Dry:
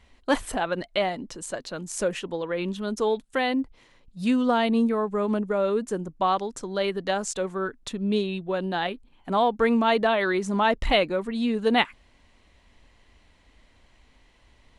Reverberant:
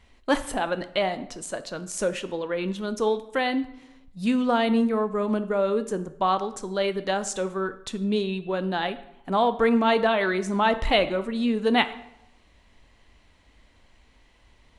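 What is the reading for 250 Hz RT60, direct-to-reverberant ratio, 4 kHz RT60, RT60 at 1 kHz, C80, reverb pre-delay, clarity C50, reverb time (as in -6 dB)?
0.85 s, 11.0 dB, 0.55 s, 0.80 s, 17.0 dB, 10 ms, 14.5 dB, 0.85 s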